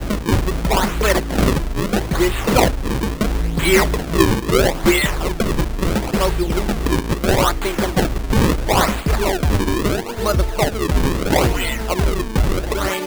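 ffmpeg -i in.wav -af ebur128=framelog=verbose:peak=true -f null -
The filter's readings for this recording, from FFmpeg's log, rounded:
Integrated loudness:
  I:         -18.6 LUFS
  Threshold: -28.6 LUFS
Loudness range:
  LRA:         2.1 LU
  Threshold: -38.5 LUFS
  LRA low:   -19.4 LUFS
  LRA high:  -17.3 LUFS
True peak:
  Peak:       -1.1 dBFS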